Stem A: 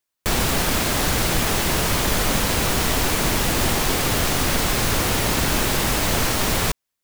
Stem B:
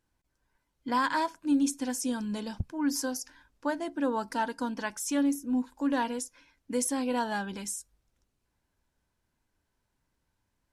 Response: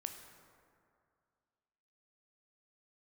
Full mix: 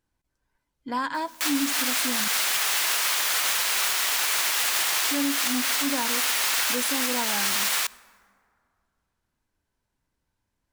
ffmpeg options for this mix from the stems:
-filter_complex "[0:a]highpass=1300,acompressor=mode=upward:threshold=-29dB:ratio=2.5,adelay=1150,volume=1dB,asplit=2[link_01][link_02];[link_02]volume=-14dB[link_03];[1:a]volume=-2dB,asplit=3[link_04][link_05][link_06];[link_04]atrim=end=2.28,asetpts=PTS-STARTPTS,afade=type=out:start_time=2.276:duration=0.004:curve=hsin[link_07];[link_05]atrim=start=2.28:end=5.04,asetpts=PTS-STARTPTS,volume=0[link_08];[link_06]atrim=start=5.04,asetpts=PTS-STARTPTS,afade=type=in:duration=0.004:curve=hsin[link_09];[link_07][link_08][link_09]concat=n=3:v=0:a=1,asplit=3[link_10][link_11][link_12];[link_11]volume=-13dB[link_13];[link_12]apad=whole_len=360871[link_14];[link_01][link_14]sidechaincompress=threshold=-32dB:ratio=8:attack=8.2:release=250[link_15];[2:a]atrim=start_sample=2205[link_16];[link_03][link_13]amix=inputs=2:normalize=0[link_17];[link_17][link_16]afir=irnorm=-1:irlink=0[link_18];[link_15][link_10][link_18]amix=inputs=3:normalize=0,alimiter=limit=-14.5dB:level=0:latency=1:release=43"

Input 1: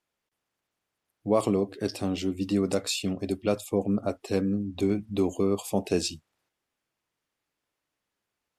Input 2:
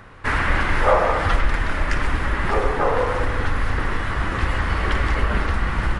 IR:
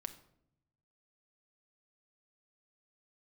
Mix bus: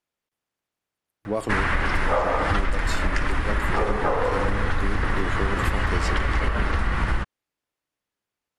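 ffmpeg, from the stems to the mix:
-filter_complex "[0:a]volume=-3dB[link_01];[1:a]adelay=1250,volume=2dB[link_02];[link_01][link_02]amix=inputs=2:normalize=0,acompressor=threshold=-18dB:ratio=6"

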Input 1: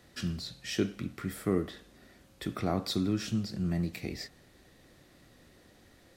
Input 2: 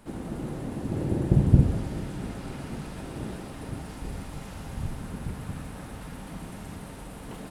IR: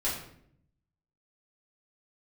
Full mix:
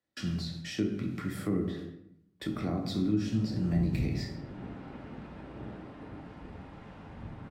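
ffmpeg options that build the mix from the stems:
-filter_complex "[0:a]agate=range=-30dB:threshold=-50dB:ratio=16:detection=peak,highshelf=frequency=8300:gain=-8.5,volume=-2dB,asplit=3[link_01][link_02][link_03];[link_02]volume=-4.5dB[link_04];[1:a]lowpass=2600,adelay=2400,volume=-9.5dB,asplit=2[link_05][link_06];[link_06]volume=-9dB[link_07];[link_03]apad=whole_len=436737[link_08];[link_05][link_08]sidechaincompress=threshold=-55dB:ratio=8:attack=16:release=299[link_09];[2:a]atrim=start_sample=2205[link_10];[link_04][link_07]amix=inputs=2:normalize=0[link_11];[link_11][link_10]afir=irnorm=-1:irlink=0[link_12];[link_01][link_09][link_12]amix=inputs=3:normalize=0,highpass=frequency=120:poles=1,acrossover=split=290[link_13][link_14];[link_14]acompressor=threshold=-40dB:ratio=3[link_15];[link_13][link_15]amix=inputs=2:normalize=0"

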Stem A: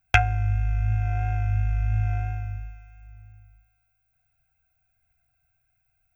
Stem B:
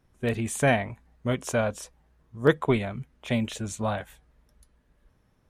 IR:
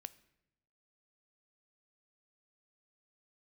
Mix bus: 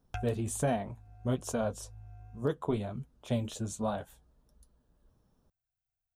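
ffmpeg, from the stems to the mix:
-filter_complex "[0:a]volume=-18dB[link_01];[1:a]flanger=delay=4.1:depth=7.4:regen=-46:speed=1.3:shape=sinusoidal,volume=0.5dB,asplit=2[link_02][link_03];[link_03]apad=whole_len=271594[link_04];[link_01][link_04]sidechaincompress=threshold=-37dB:ratio=4:attack=6:release=986[link_05];[link_05][link_02]amix=inputs=2:normalize=0,equalizer=frequency=2100:width_type=o:width=0.87:gain=-14.5,alimiter=limit=-20.5dB:level=0:latency=1:release=247"

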